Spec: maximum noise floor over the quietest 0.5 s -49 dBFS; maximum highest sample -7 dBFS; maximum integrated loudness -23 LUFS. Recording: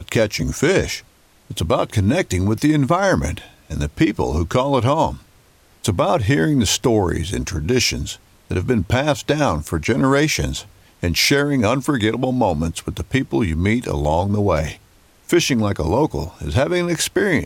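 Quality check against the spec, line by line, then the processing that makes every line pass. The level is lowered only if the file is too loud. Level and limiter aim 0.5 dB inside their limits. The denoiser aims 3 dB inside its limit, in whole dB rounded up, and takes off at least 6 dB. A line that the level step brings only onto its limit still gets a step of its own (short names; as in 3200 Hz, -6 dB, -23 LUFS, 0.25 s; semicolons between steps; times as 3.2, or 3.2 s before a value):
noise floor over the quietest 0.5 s -52 dBFS: OK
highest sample -5.0 dBFS: fail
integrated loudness -19.0 LUFS: fail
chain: gain -4.5 dB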